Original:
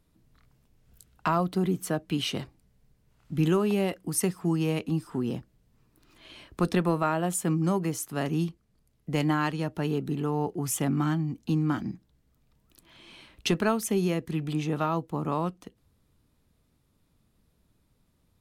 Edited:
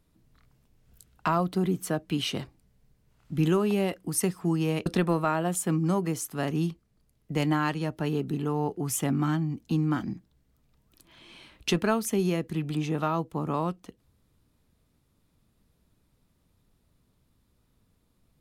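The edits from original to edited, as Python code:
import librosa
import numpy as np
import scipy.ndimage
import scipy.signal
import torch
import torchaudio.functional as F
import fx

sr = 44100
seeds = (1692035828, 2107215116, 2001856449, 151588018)

y = fx.edit(x, sr, fx.cut(start_s=4.86, length_s=1.78), tone=tone)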